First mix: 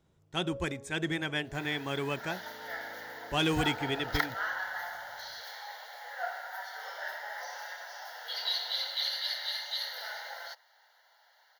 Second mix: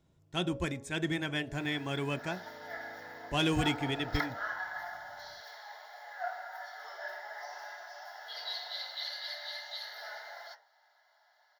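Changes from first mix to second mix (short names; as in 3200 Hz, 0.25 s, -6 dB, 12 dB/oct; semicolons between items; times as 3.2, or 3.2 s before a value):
second sound -5.5 dB; reverb: on, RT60 0.45 s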